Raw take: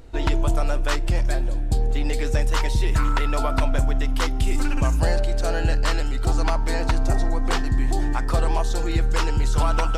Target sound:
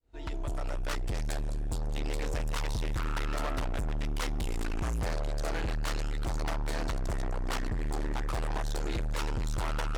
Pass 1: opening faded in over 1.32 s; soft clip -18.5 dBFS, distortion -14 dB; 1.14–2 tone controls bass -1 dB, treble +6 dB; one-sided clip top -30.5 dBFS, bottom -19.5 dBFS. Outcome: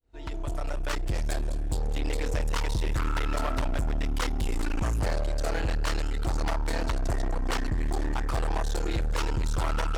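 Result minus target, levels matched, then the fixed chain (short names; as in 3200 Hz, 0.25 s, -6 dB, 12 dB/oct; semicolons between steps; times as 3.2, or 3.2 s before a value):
soft clip: distortion -7 dB
opening faded in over 1.32 s; soft clip -27.5 dBFS, distortion -7 dB; 1.14–2 tone controls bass -1 dB, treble +6 dB; one-sided clip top -30.5 dBFS, bottom -19.5 dBFS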